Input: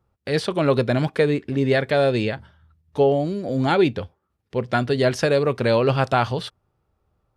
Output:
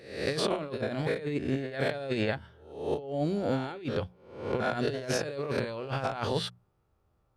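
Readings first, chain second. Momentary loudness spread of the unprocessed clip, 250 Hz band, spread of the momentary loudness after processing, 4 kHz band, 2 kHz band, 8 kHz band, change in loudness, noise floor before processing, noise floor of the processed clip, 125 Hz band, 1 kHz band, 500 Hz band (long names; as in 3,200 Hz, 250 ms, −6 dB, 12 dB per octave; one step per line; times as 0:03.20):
11 LU, −9.5 dB, 5 LU, −6.5 dB, −9.0 dB, can't be measured, −11.0 dB, −74 dBFS, −72 dBFS, −11.0 dB, −11.0 dB, −11.0 dB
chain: peak hold with a rise ahead of every peak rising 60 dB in 0.63 s
compressor whose output falls as the input rises −22 dBFS, ratio −0.5
mains-hum notches 60/120/180 Hz
level −8 dB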